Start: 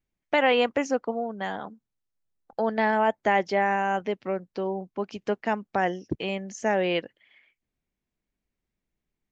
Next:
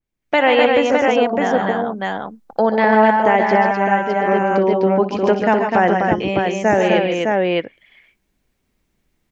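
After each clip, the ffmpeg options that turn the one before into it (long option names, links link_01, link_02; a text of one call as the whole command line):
ffmpeg -i in.wav -af "aecho=1:1:60|132|148|253|609:0.2|0.335|0.447|0.668|0.596,dynaudnorm=framelen=180:gausssize=3:maxgain=13dB,adynamicequalizer=threshold=0.0251:dfrequency=2600:dqfactor=0.7:tfrequency=2600:tqfactor=0.7:attack=5:release=100:ratio=0.375:range=3.5:mode=cutabove:tftype=highshelf" out.wav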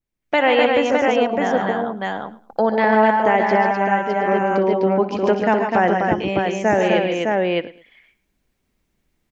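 ffmpeg -i in.wav -af "aecho=1:1:108|216:0.119|0.0345,volume=-2dB" out.wav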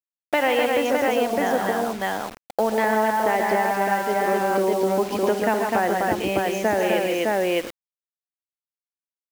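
ffmpeg -i in.wav -af "equalizer=frequency=160:width=3.7:gain=-10.5,acompressor=threshold=-18dB:ratio=3,acrusher=bits=5:mix=0:aa=0.000001" out.wav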